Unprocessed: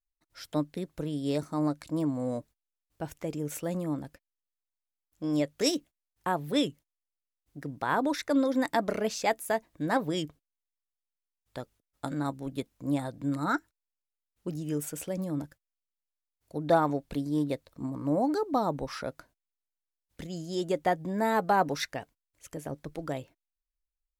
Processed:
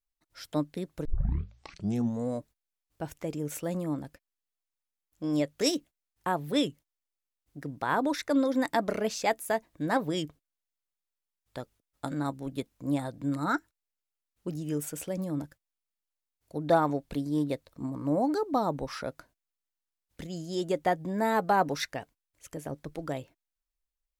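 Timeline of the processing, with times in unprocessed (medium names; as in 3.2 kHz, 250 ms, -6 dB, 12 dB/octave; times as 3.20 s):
1.05 s: tape start 1.24 s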